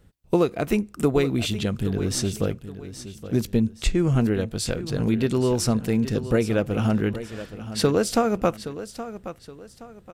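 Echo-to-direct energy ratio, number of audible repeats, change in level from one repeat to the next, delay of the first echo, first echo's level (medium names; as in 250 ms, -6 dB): -12.5 dB, 2, -9.5 dB, 821 ms, -13.0 dB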